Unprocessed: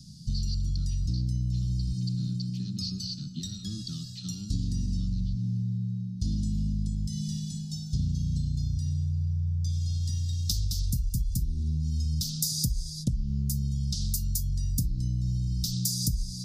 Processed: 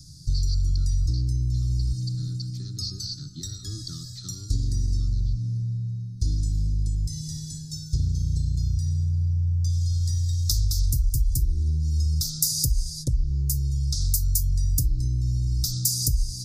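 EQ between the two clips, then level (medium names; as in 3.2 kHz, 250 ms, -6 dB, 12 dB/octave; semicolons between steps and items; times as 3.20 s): static phaser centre 760 Hz, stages 6; +7.5 dB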